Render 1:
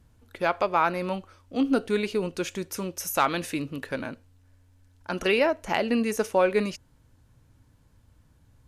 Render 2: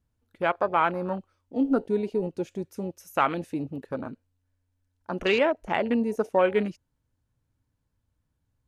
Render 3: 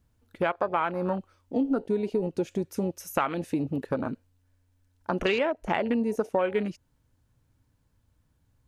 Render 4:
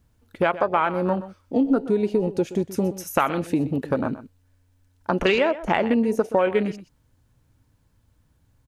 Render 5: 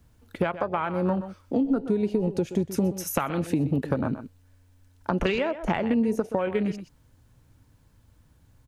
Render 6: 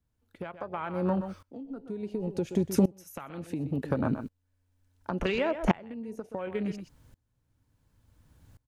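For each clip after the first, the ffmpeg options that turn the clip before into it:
-af "afwtdn=0.0282"
-af "acompressor=threshold=-32dB:ratio=4,volume=7.5dB"
-af "aecho=1:1:125:0.178,volume=5.5dB"
-filter_complex "[0:a]acrossover=split=170[a][b];[b]acompressor=threshold=-31dB:ratio=3[c];[a][c]amix=inputs=2:normalize=0,volume=4dB"
-af "aeval=exprs='val(0)*pow(10,-24*if(lt(mod(-0.7*n/s,1),2*abs(-0.7)/1000),1-mod(-0.7*n/s,1)/(2*abs(-0.7)/1000),(mod(-0.7*n/s,1)-2*abs(-0.7)/1000)/(1-2*abs(-0.7)/1000))/20)':c=same,volume=3dB"

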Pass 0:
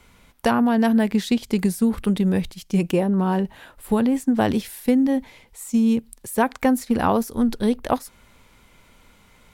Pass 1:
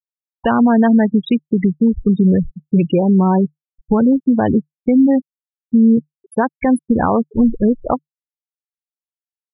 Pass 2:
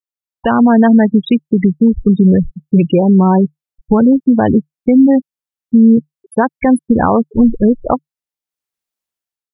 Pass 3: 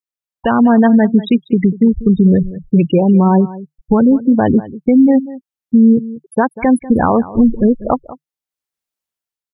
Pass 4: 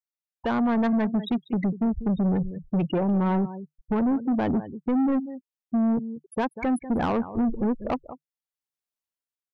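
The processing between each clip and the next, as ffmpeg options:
-af "afftfilt=real='re*gte(hypot(re,im),0.112)':imag='im*gte(hypot(re,im),0.112)':win_size=1024:overlap=0.75,equalizer=f=150:w=6.5:g=5,alimiter=limit=-14dB:level=0:latency=1:release=117,volume=8.5dB"
-af "dynaudnorm=f=180:g=5:m=12dB,volume=-1dB"
-filter_complex "[0:a]asplit=2[a][b];[b]adelay=192.4,volume=-17dB,highshelf=f=4k:g=-4.33[c];[a][c]amix=inputs=2:normalize=0,volume=-1dB"
-af "asoftclip=type=tanh:threshold=-11dB,volume=-8.5dB"

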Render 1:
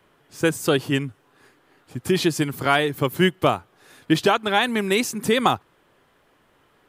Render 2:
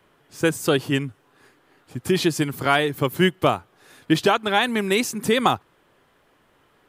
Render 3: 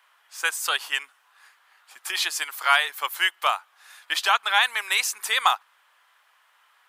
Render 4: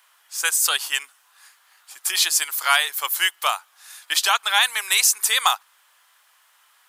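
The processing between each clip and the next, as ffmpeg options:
-af anull
-af "highpass=f=920:w=0.5412,highpass=f=920:w=1.3066,volume=2.5dB"
-af "bass=f=250:g=-3,treble=f=4k:g=12"

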